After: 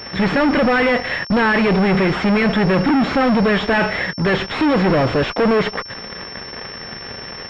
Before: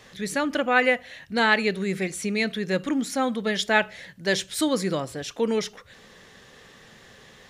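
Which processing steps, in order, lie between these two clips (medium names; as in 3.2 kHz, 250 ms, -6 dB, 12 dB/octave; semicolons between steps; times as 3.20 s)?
fuzz box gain 40 dB, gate -49 dBFS; class-D stage that switches slowly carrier 5.4 kHz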